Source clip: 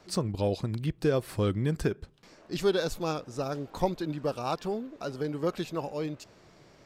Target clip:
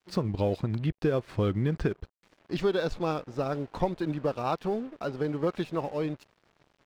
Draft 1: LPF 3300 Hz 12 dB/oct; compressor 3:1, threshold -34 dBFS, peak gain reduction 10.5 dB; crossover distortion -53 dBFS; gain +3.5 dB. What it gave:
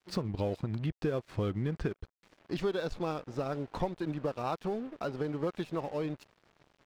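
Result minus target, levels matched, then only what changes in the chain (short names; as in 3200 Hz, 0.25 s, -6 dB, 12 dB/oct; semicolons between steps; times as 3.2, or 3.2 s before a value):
compressor: peak gain reduction +5.5 dB
change: compressor 3:1, threshold -26 dBFS, peak gain reduction 5 dB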